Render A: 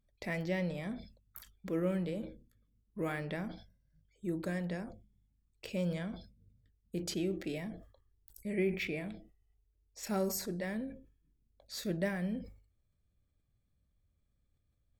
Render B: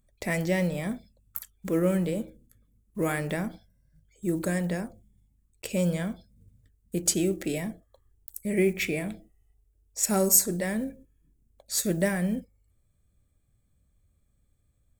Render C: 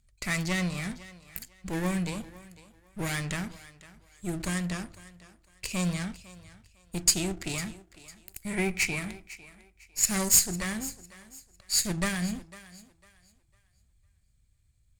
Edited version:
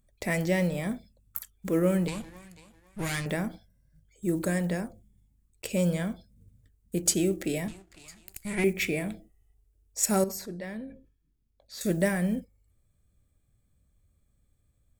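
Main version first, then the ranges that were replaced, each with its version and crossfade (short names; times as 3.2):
B
2.08–3.26 from C
7.68–8.64 from C
10.24–11.81 from A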